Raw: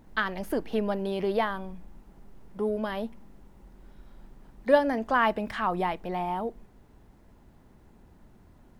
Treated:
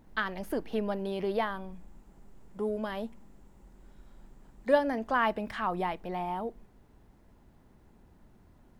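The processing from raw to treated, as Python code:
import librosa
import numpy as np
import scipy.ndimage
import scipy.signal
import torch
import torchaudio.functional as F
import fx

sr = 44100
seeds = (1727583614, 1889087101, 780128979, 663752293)

y = fx.peak_eq(x, sr, hz=7400.0, db=8.0, octaves=0.34, at=(1.72, 4.74))
y = y * 10.0 ** (-3.5 / 20.0)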